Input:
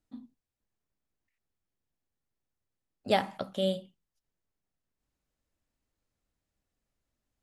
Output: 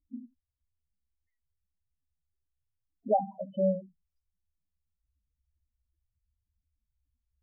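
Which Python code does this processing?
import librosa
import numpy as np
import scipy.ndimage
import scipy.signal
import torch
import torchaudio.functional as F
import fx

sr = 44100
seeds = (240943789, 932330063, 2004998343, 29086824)

y = fx.spec_topn(x, sr, count=4)
y = fx.peak_eq(y, sr, hz=70.0, db=12.0, octaves=0.45)
y = y * 10.0 ** (3.5 / 20.0)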